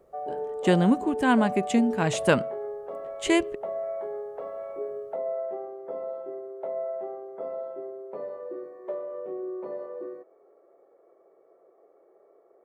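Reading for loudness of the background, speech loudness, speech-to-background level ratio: −34.5 LKFS, −24.5 LKFS, 10.0 dB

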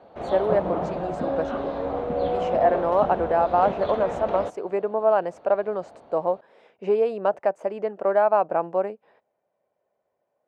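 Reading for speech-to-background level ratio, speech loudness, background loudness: 4.0 dB, −24.5 LKFS, −28.5 LKFS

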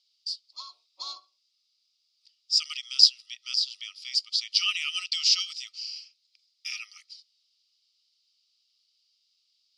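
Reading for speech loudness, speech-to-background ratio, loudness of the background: −25.0 LKFS, 16.0 dB, −41.0 LKFS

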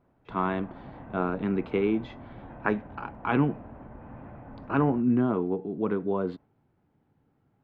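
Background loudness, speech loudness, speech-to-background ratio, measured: −46.0 LKFS, −28.5 LKFS, 17.5 dB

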